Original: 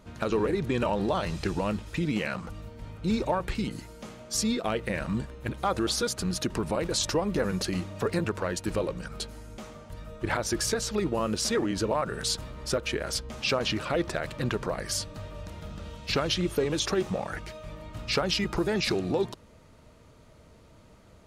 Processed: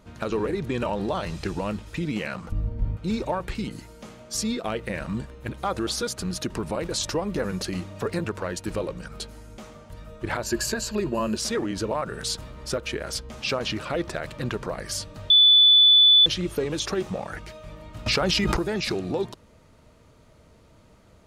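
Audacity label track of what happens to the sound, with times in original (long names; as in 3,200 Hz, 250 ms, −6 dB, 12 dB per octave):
2.520000	2.970000	spectral tilt −4 dB per octave
10.410000	11.370000	EQ curve with evenly spaced ripples crests per octave 1.4, crest to trough 10 dB
15.300000	16.260000	beep over 3,480 Hz −11.5 dBFS
18.060000	18.570000	envelope flattener amount 100%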